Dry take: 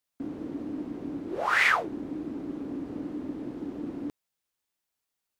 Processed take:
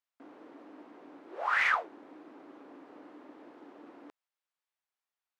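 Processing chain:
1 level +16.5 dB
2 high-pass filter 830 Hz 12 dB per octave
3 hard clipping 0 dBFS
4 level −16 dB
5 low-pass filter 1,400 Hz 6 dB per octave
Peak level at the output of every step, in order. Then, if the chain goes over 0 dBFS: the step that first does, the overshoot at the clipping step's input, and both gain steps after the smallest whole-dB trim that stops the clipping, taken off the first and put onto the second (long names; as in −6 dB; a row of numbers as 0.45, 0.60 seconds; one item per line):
+5.5, +5.0, 0.0, −16.0, −17.0 dBFS
step 1, 5.0 dB
step 1 +11.5 dB, step 4 −11 dB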